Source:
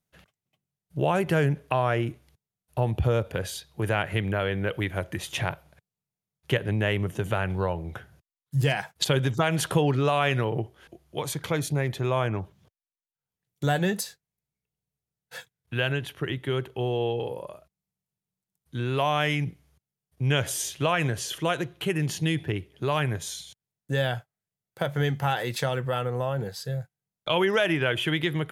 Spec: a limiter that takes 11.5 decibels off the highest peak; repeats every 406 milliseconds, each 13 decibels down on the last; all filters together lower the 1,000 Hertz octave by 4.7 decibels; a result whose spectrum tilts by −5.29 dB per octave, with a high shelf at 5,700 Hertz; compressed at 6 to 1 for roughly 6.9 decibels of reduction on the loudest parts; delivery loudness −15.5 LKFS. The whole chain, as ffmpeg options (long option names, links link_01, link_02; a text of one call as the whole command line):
ffmpeg -i in.wav -af "equalizer=frequency=1000:width_type=o:gain=-6.5,highshelf=frequency=5700:gain=-7.5,acompressor=threshold=-27dB:ratio=6,alimiter=level_in=1dB:limit=-24dB:level=0:latency=1,volume=-1dB,aecho=1:1:406|812|1218:0.224|0.0493|0.0108,volume=20dB" out.wav